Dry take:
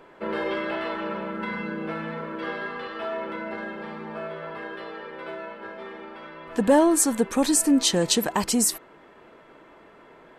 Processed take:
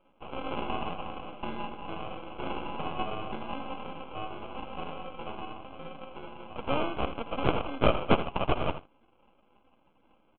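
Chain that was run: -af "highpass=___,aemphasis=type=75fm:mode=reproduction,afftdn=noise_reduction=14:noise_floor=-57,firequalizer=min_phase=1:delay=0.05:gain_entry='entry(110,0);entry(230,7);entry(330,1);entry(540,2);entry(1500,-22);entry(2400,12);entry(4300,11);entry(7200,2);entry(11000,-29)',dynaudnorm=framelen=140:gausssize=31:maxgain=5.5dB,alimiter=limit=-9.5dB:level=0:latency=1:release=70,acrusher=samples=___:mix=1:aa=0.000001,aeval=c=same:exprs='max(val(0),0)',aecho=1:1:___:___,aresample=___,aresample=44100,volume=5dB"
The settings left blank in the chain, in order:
1500, 24, 82, 0.237, 8000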